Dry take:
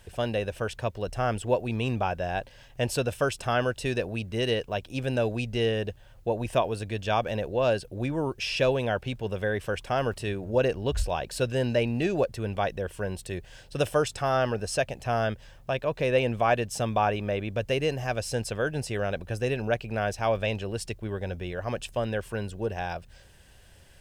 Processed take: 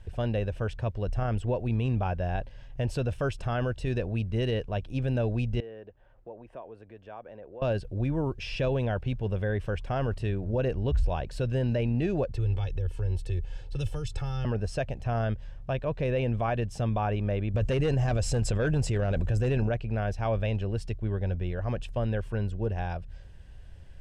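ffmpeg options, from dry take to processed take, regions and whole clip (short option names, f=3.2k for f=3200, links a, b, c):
-filter_complex "[0:a]asettb=1/sr,asplit=3[a][b][c];[a]atrim=end=5.604[d];[b]atrim=start=5.6:end=7.62,asetpts=PTS-STARTPTS,afade=t=in:d=0.004:c=qsin,afade=t=out:st=2.016:d=0.004:c=qsin,acompressor=threshold=-46dB:ratio=2:attack=3.2:release=140:knee=1:detection=peak,acrossover=split=270 2100:gain=0.126 1 0.178[e][f][g];[e][f][g]amix=inputs=3:normalize=0[h];[c]atrim=start=7.616[i];[d][h]acrossfade=d=0.004:c1=hsin:c2=qsin[j];[j][i]acrossfade=d=0.004:c1=qsin:c2=hsin,asettb=1/sr,asplit=3[k][l][m];[k]atrim=end=12.344[n];[l]atrim=start=12.34:end=14.45,asetpts=PTS-STARTPTS,afade=t=in:d=0.004:c=qsin,afade=t=out:st=2.106:d=0.004:c=qsin,bandreject=f=1.9k:w=13,aecho=1:1:2.3:0.79,atrim=end_sample=93051,acrossover=split=170|3000[o][p][q];[p]acompressor=threshold=-38dB:ratio=6:attack=3.2:release=140:knee=2.83:detection=peak[r];[o][r][q]amix=inputs=3:normalize=0[s];[m]atrim=start=14.446[t];[n][s]acrossfade=d=0.004:c1=hsin:c2=qsin[u];[u][t]acrossfade=d=0.004:c1=qsin:c2=hsin,asettb=1/sr,asplit=3[v][w][x];[v]atrim=end=17.544[y];[w]atrim=start=17.54:end=19.69,asetpts=PTS-STARTPTS,afade=t=in:d=0.004:c=qsin,afade=t=out:st=2.146:d=0.004:c=qsin,equalizer=f=7.4k:t=o:w=0.29:g=10.5,aeval=exprs='0.2*sin(PI/2*1.78*val(0)/0.2)':c=same[z];[x]atrim=start=19.686[aa];[y][z]acrossfade=d=0.004:c1=hsin:c2=qsin[ab];[ab][aa]acrossfade=d=0.004:c1=qsin:c2=hsin,aemphasis=mode=reproduction:type=bsi,alimiter=limit=-15dB:level=0:latency=1:release=24,volume=-4dB"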